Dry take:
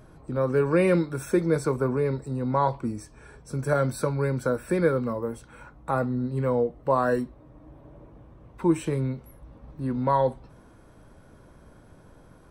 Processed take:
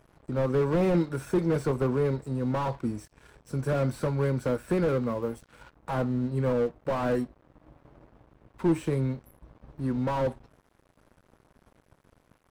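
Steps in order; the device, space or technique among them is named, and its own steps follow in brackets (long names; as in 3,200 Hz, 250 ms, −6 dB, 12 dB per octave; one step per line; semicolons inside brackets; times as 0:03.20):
early transistor amplifier (dead-zone distortion −49.5 dBFS; slew-rate limiting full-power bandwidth 35 Hz)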